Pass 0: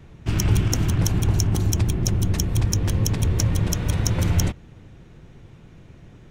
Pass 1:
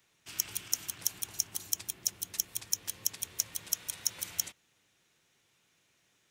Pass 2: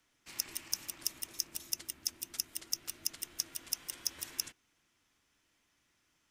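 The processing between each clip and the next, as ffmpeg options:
-af "aderivative,volume=-2dB"
-af "afreqshift=-440,volume=-4dB"

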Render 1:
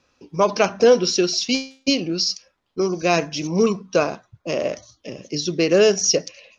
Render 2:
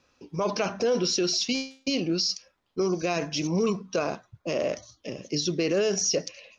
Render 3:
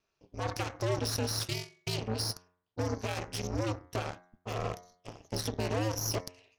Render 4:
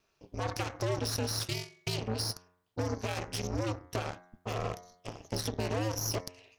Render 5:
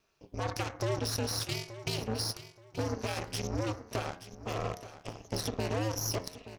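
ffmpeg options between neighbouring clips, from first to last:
-af "alimiter=limit=-15dB:level=0:latency=1:release=27,volume=-2dB"
-af "aeval=exprs='0.15*(cos(1*acos(clip(val(0)/0.15,-1,1)))-cos(1*PI/2))+0.0531*(cos(2*acos(clip(val(0)/0.15,-1,1)))-cos(2*PI/2))+0.00596*(cos(3*acos(clip(val(0)/0.15,-1,1)))-cos(3*PI/2))+0.0237*(cos(6*acos(clip(val(0)/0.15,-1,1)))-cos(6*PI/2))+0.00841*(cos(7*acos(clip(val(0)/0.15,-1,1)))-cos(7*PI/2))':c=same,aeval=exprs='val(0)*sin(2*PI*110*n/s)':c=same,bandreject=f=89.39:t=h:w=4,bandreject=f=178.78:t=h:w=4,bandreject=f=268.17:t=h:w=4,bandreject=f=357.56:t=h:w=4,bandreject=f=446.95:t=h:w=4,bandreject=f=536.34:t=h:w=4,bandreject=f=625.73:t=h:w=4,bandreject=f=715.12:t=h:w=4,bandreject=f=804.51:t=h:w=4,bandreject=f=893.9:t=h:w=4,bandreject=f=983.29:t=h:w=4,bandreject=f=1.07268k:t=h:w=4,bandreject=f=1.16207k:t=h:w=4,bandreject=f=1.25146k:t=h:w=4,bandreject=f=1.34085k:t=h:w=4,bandreject=f=1.43024k:t=h:w=4,bandreject=f=1.51963k:t=h:w=4,bandreject=f=1.60902k:t=h:w=4,bandreject=f=1.69841k:t=h:w=4,bandreject=f=1.7878k:t=h:w=4,bandreject=f=1.87719k:t=h:w=4,bandreject=f=1.96658k:t=h:w=4,bandreject=f=2.05597k:t=h:w=4,bandreject=f=2.14536k:t=h:w=4,bandreject=f=2.23475k:t=h:w=4,volume=-5.5dB"
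-af "acompressor=threshold=-47dB:ratio=1.5,volume=6.5dB"
-af "aecho=1:1:877|1754|2631:0.2|0.0519|0.0135"

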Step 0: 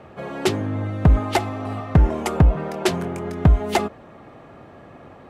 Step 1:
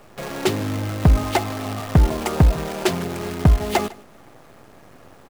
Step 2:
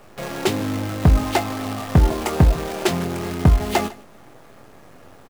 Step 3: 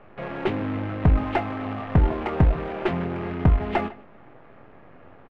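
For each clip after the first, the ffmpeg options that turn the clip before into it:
-af "acrusher=bits=6:dc=4:mix=0:aa=0.000001,aecho=1:1:152:0.0794"
-filter_complex "[0:a]asplit=2[a][b];[b]adelay=23,volume=-8.5dB[c];[a][c]amix=inputs=2:normalize=0"
-filter_complex "[0:a]lowpass=f=2.6k:w=0.5412,lowpass=f=2.6k:w=1.3066,asplit=2[a][b];[b]aeval=exprs='clip(val(0),-1,0.0422)':c=same,volume=-4.5dB[c];[a][c]amix=inputs=2:normalize=0,volume=-6.5dB"

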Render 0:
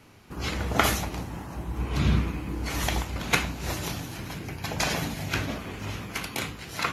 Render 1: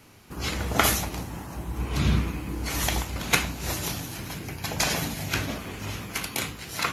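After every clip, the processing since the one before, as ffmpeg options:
-af "highshelf=f=5.7k:g=8"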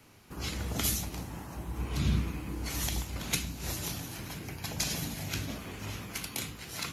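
-filter_complex "[0:a]acrossover=split=330|3000[a][b][c];[b]acompressor=threshold=-37dB:ratio=6[d];[a][d][c]amix=inputs=3:normalize=0,volume=-5dB"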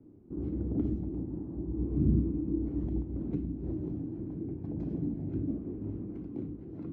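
-af "lowpass=f=320:t=q:w=4"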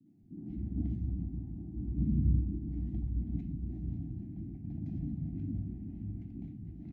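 -filter_complex "[0:a]firequalizer=gain_entry='entry(200,0);entry(470,-26);entry(720,-8);entry(1100,-27);entry(1900,-5)':delay=0.05:min_phase=1,acrossover=split=150|450[a][b][c];[c]adelay=60[d];[a]adelay=190[e];[e][b][d]amix=inputs=3:normalize=0,volume=1.5dB"

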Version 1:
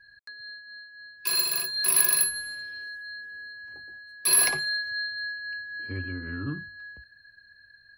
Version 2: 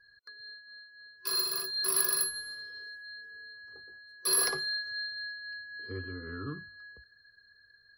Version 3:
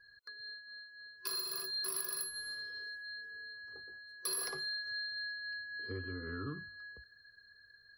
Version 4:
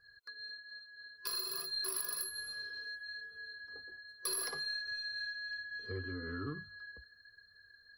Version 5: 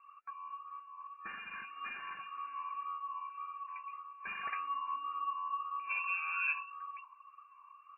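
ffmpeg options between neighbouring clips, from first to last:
-af "superequalizer=7b=3.16:10b=2.51:12b=0.398:14b=1.78:15b=0.631,volume=-7dB"
-af "acompressor=threshold=-37dB:ratio=4"
-af "aeval=exprs='0.0708*(cos(1*acos(clip(val(0)/0.0708,-1,1)))-cos(1*PI/2))+0.00251*(cos(3*acos(clip(val(0)/0.0708,-1,1)))-cos(3*PI/2))+0.00158*(cos(4*acos(clip(val(0)/0.0708,-1,1)))-cos(4*PI/2))':c=same,flanger=delay=1.5:depth=2.6:regen=-40:speed=1.2:shape=sinusoidal,volume=5dB"
-af "flanger=delay=0.5:depth=9.7:regen=28:speed=1.8:shape=sinusoidal,lowpass=f=2.4k:t=q:w=0.5098,lowpass=f=2.4k:t=q:w=0.6013,lowpass=f=2.4k:t=q:w=0.9,lowpass=f=2.4k:t=q:w=2.563,afreqshift=-2800,volume=8.5dB"

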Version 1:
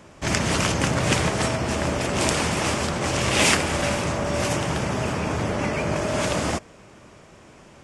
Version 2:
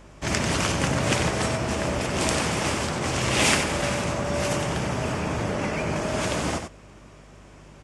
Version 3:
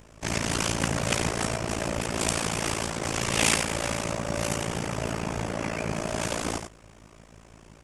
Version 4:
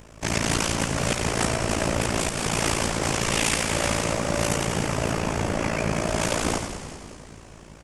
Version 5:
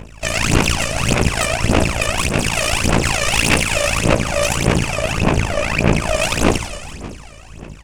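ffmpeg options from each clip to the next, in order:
-filter_complex "[0:a]aeval=exprs='val(0)+0.00501*(sin(2*PI*50*n/s)+sin(2*PI*2*50*n/s)/2+sin(2*PI*3*50*n/s)/3+sin(2*PI*4*50*n/s)/4+sin(2*PI*5*50*n/s)/5)':c=same,asplit=2[a][b];[b]aecho=0:1:93:0.422[c];[a][c]amix=inputs=2:normalize=0,volume=-2.5dB"
-af "highshelf=f=9.2k:g=10.5,tremolo=f=56:d=0.919"
-filter_complex "[0:a]alimiter=limit=-15dB:level=0:latency=1:release=266,asplit=2[a][b];[b]asplit=7[c][d][e][f][g][h][i];[c]adelay=192,afreqshift=-110,volume=-10dB[j];[d]adelay=384,afreqshift=-220,volume=-14.7dB[k];[e]adelay=576,afreqshift=-330,volume=-19.5dB[l];[f]adelay=768,afreqshift=-440,volume=-24.2dB[m];[g]adelay=960,afreqshift=-550,volume=-28.9dB[n];[h]adelay=1152,afreqshift=-660,volume=-33.7dB[o];[i]adelay=1344,afreqshift=-770,volume=-38.4dB[p];[j][k][l][m][n][o][p]amix=inputs=7:normalize=0[q];[a][q]amix=inputs=2:normalize=0,volume=4.5dB"
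-af "aphaser=in_gain=1:out_gain=1:delay=1.7:decay=0.75:speed=1.7:type=sinusoidal,equalizer=f=2.6k:t=o:w=0.33:g=9,aeval=exprs='(tanh(3.55*val(0)+0.7)-tanh(0.7))/3.55':c=same,volume=5.5dB"

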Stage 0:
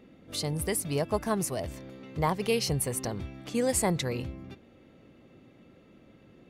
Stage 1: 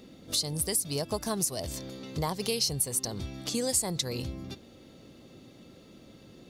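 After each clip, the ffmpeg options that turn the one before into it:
-af "highshelf=f=3.2k:t=q:w=1.5:g=10,acompressor=threshold=-34dB:ratio=2.5,volume=3.5dB"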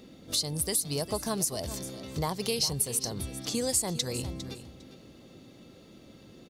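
-af "aecho=1:1:404|808:0.211|0.0338"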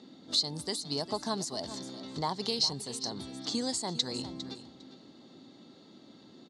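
-af "highpass=190,equalizer=f=260:t=q:w=4:g=4,equalizer=f=510:t=q:w=4:g=-6,equalizer=f=880:t=q:w=4:g=5,equalizer=f=2.5k:t=q:w=4:g=-9,equalizer=f=4.1k:t=q:w=4:g=7,equalizer=f=5.9k:t=q:w=4:g=-4,lowpass=f=7.1k:w=0.5412,lowpass=f=7.1k:w=1.3066,volume=-1.5dB"

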